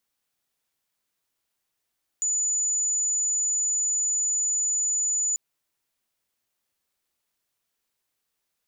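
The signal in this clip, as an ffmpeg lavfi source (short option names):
-f lavfi -i "aevalsrc='0.0794*sin(2*PI*6970*t)':d=3.14:s=44100"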